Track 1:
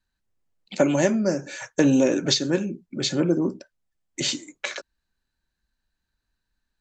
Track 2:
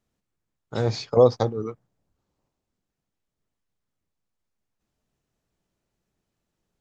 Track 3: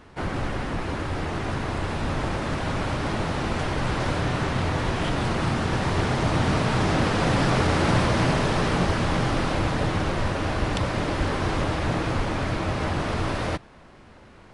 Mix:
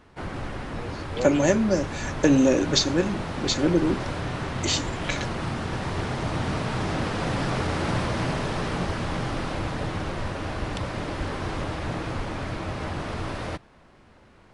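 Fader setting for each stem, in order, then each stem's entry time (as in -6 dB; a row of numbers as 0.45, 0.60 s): 0.0, -15.0, -5.0 dB; 0.45, 0.00, 0.00 s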